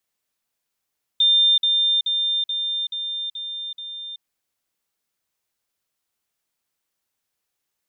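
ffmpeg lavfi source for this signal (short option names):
-f lavfi -i "aevalsrc='pow(10,(-13-3*floor(t/0.43))/20)*sin(2*PI*3600*t)*clip(min(mod(t,0.43),0.38-mod(t,0.43))/0.005,0,1)':d=3.01:s=44100"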